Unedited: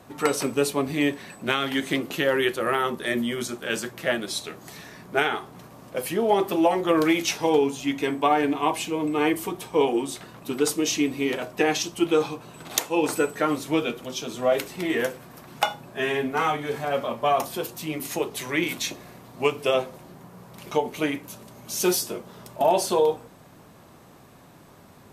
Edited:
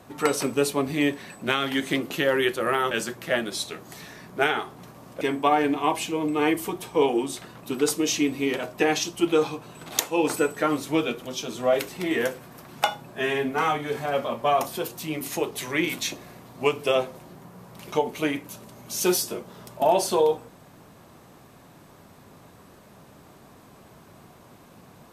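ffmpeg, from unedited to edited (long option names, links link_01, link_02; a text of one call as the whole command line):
ffmpeg -i in.wav -filter_complex "[0:a]asplit=3[link_01][link_02][link_03];[link_01]atrim=end=2.912[link_04];[link_02]atrim=start=3.668:end=5.972[link_05];[link_03]atrim=start=7.998[link_06];[link_04][link_05]acrossfade=duration=0.004:curve1=hsin:curve2=hsin[link_07];[link_07][link_06]acrossfade=duration=0.004:curve1=hsin:curve2=hsin" out.wav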